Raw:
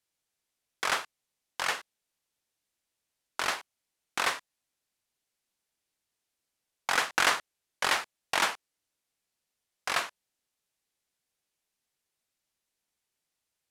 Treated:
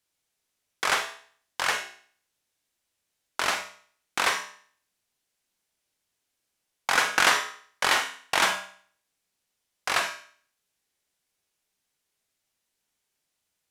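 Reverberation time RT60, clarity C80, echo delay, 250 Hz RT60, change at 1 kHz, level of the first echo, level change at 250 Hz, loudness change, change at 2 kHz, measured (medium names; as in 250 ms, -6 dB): 0.50 s, 12.5 dB, no echo, 0.50 s, +4.0 dB, no echo, +4.0 dB, +4.5 dB, +5.0 dB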